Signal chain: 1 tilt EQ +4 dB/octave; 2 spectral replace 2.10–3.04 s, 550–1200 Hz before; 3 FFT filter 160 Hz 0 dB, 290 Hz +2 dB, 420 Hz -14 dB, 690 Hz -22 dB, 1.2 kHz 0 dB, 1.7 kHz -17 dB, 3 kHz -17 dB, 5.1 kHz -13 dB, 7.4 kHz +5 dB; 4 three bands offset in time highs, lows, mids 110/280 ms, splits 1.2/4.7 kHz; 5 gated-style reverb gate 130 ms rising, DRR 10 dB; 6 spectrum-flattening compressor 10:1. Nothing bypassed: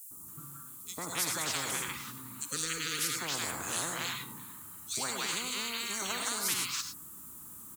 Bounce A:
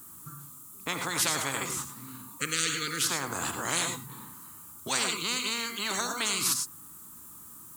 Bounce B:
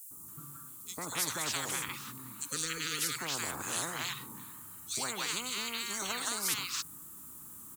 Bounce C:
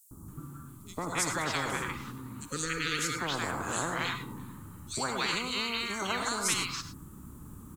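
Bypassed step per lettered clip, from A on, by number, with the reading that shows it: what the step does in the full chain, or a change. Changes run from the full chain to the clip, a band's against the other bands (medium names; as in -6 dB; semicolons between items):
4, momentary loudness spread change +4 LU; 5, loudness change -1.0 LU; 1, 8 kHz band -8.5 dB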